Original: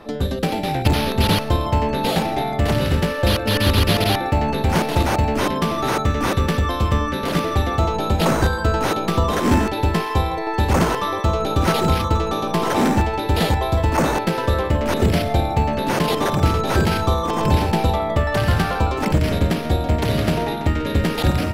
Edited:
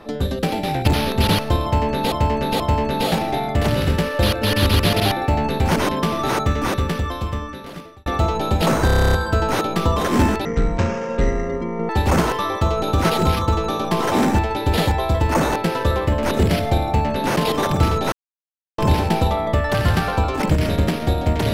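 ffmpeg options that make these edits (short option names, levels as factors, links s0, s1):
-filter_complex "[0:a]asplit=18[s0][s1][s2][s3][s4][s5][s6][s7][s8][s9][s10][s11][s12][s13][s14][s15][s16][s17];[s0]atrim=end=2.122[s18];[s1]atrim=start=1.638:end=2.122[s19];[s2]atrim=start=1.638:end=4.802[s20];[s3]atrim=start=5.348:end=7.65,asetpts=PTS-STARTPTS,afade=t=out:st=0.732:d=1.57[s21];[s4]atrim=start=7.65:end=8.482,asetpts=PTS-STARTPTS,afade=t=in:d=0.004:c=hsin[s22];[s5]atrim=start=8.448:end=8.482[s23];[s6]atrim=start=8.448:end=8.482[s24];[s7]atrim=start=8.448:end=8.482[s25];[s8]atrim=start=8.448:end=8.482[s26];[s9]atrim=start=8.448:end=8.482[s27];[s10]atrim=start=8.448:end=8.482[s28];[s11]atrim=start=8.448:end=8.482[s29];[s12]atrim=start=8.448:end=8.482[s30];[s13]atrim=start=8.448:end=9.774[s31];[s14]atrim=start=9.77:end=10.52,asetpts=PTS-STARTPTS,asetrate=22932,aresample=44100[s32];[s15]atrim=start=10.516:end=16.75,asetpts=PTS-STARTPTS,afade=t=out:st=6.23:d=0.004:c=hsin[s33];[s16]atrim=start=16.75:end=17.41,asetpts=PTS-STARTPTS,volume=0[s34];[s17]atrim=start=17.41,asetpts=PTS-STARTPTS,afade=t=in:d=0.004:c=hsin[s35];[s18][s19]acrossfade=d=0.004:c1=hsin:c2=hsin[s36];[s36][s20]acrossfade=d=0.004:c1=hsin:c2=hsin[s37];[s21][s22]concat=n=2:v=0:a=1[s38];[s37][s38]acrossfade=d=0.004:c1=hsin:c2=hsin[s39];[s39][s23]acrossfade=d=0.004:c1=hsin:c2=hsin[s40];[s40][s24]acrossfade=d=0.004:c1=hsin:c2=hsin[s41];[s41][s25]acrossfade=d=0.004:c1=hsin:c2=hsin[s42];[s42][s26]acrossfade=d=0.004:c1=hsin:c2=hsin[s43];[s43][s27]acrossfade=d=0.004:c1=hsin:c2=hsin[s44];[s44][s28]acrossfade=d=0.004:c1=hsin:c2=hsin[s45];[s45][s29]acrossfade=d=0.004:c1=hsin:c2=hsin[s46];[s46][s30]acrossfade=d=0.004:c1=hsin:c2=hsin[s47];[s47][s31]acrossfade=d=0.004:c1=hsin:c2=hsin[s48];[s48][s32]acrossfade=d=0.004:c1=hsin:c2=hsin[s49];[s33][s34][s35]concat=n=3:v=0:a=1[s50];[s49][s50]acrossfade=d=0.004:c1=hsin:c2=hsin"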